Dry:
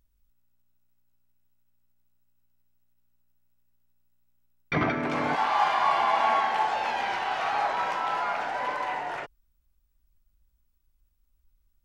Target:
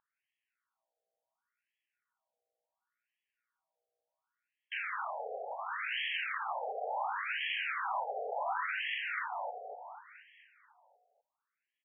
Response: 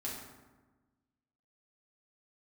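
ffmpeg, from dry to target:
-filter_complex "[0:a]asettb=1/sr,asplit=3[s0][s1][s2];[s0]atrim=end=4.784[s3];[s1]atrim=start=4.78:end=6.34,asetpts=PTS-STARTPTS,afade=t=in:d=0.004:c=qsin,afade=t=out:st=1.556:d=0.004:c=qsin,asplit=2[s4][s5];[s5]highpass=f=720:p=1,volume=3.98,asoftclip=type=tanh:threshold=0.282[s6];[s4][s6]amix=inputs=2:normalize=0,lowpass=f=2600:p=1,volume=0.501[s7];[s2]atrim=start=6.336[s8];[s3][s7]acrossfade=d=0.004:c1=hsin:c2=qsin[s9];[s9][s8]acrossfade=d=0.004:c1=qsin:c2=hsin,asplit=2[s10][s11];[s11]acompressor=threshold=0.0224:ratio=6,volume=0.841[s12];[s10][s12]amix=inputs=2:normalize=0,lowshelf=f=260:g=6.5,aeval=exprs='0.0447*(abs(mod(val(0)/0.0447+3,4)-2)-1)':c=same,asplit=2[s13][s14];[s14]aecho=0:1:244|488|732|976|1220|1464|1708|1952:0.562|0.326|0.189|0.11|0.0636|0.0369|0.0214|0.0124[s15];[s13][s15]amix=inputs=2:normalize=0,afftfilt=real='re*between(b*sr/1024,560*pow(2400/560,0.5+0.5*sin(2*PI*0.7*pts/sr))/1.41,560*pow(2400/560,0.5+0.5*sin(2*PI*0.7*pts/sr))*1.41)':imag='im*between(b*sr/1024,560*pow(2400/560,0.5+0.5*sin(2*PI*0.7*pts/sr))/1.41,560*pow(2400/560,0.5+0.5*sin(2*PI*0.7*pts/sr))*1.41)':win_size=1024:overlap=0.75"

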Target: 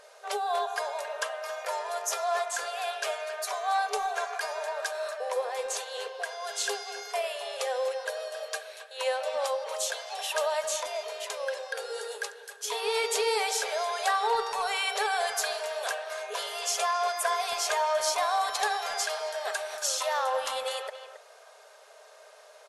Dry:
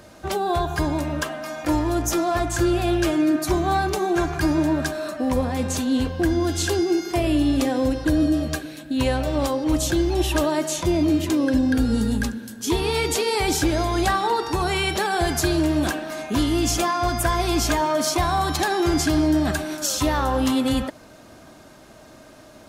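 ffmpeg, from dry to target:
-filter_complex "[0:a]afftfilt=real='re*between(b*sr/4096,400,12000)':imag='im*between(b*sr/4096,400,12000)':win_size=4096:overlap=0.75,asplit=2[s0][s1];[s1]adelay=270,highpass=300,lowpass=3400,asoftclip=type=hard:threshold=0.119,volume=0.282[s2];[s0][s2]amix=inputs=2:normalize=0,volume=0.596"

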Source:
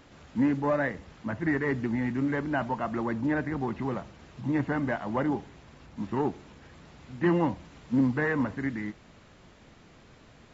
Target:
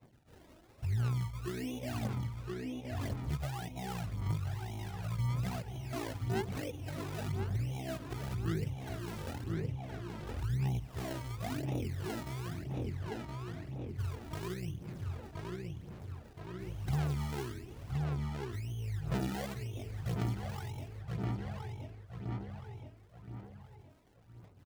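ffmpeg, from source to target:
-filter_complex "[0:a]highpass=190,highshelf=f=3400:g=-9,asetrate=18846,aresample=44100,agate=range=0.0224:threshold=0.00447:ratio=3:detection=peak,acrusher=samples=28:mix=1:aa=0.000001:lfo=1:lforange=28:lforate=1,asplit=2[s0][s1];[s1]adelay=1020,lowpass=f=3500:p=1,volume=0.316,asplit=2[s2][s3];[s3]adelay=1020,lowpass=f=3500:p=1,volume=0.4,asplit=2[s4][s5];[s5]adelay=1020,lowpass=f=3500:p=1,volume=0.4,asplit=2[s6][s7];[s7]adelay=1020,lowpass=f=3500:p=1,volume=0.4[s8];[s0][s2][s4][s6][s8]amix=inputs=5:normalize=0,acompressor=threshold=0.00794:ratio=6,aphaser=in_gain=1:out_gain=1:delay=3.2:decay=0.49:speed=0.94:type=sinusoidal,volume=1.68"

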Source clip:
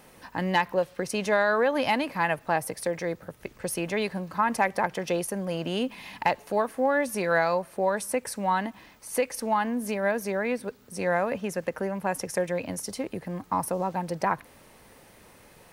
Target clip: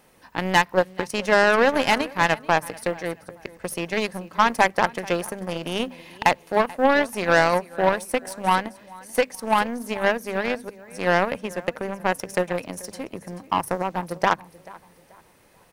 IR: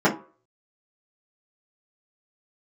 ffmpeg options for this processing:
-filter_complex "[0:a]bandreject=f=50:t=h:w=6,bandreject=f=100:t=h:w=6,bandreject=f=150:t=h:w=6,bandreject=f=200:t=h:w=6,bandreject=f=250:t=h:w=6,asplit=2[s0][s1];[s1]aecho=0:1:435|870|1305:0.2|0.0718|0.0259[s2];[s0][s2]amix=inputs=2:normalize=0,aeval=exprs='0.316*(cos(1*acos(clip(val(0)/0.316,-1,1)))-cos(1*PI/2))+0.00398*(cos(6*acos(clip(val(0)/0.316,-1,1)))-cos(6*PI/2))+0.0316*(cos(7*acos(clip(val(0)/0.316,-1,1)))-cos(7*PI/2))':c=same,volume=2.11"

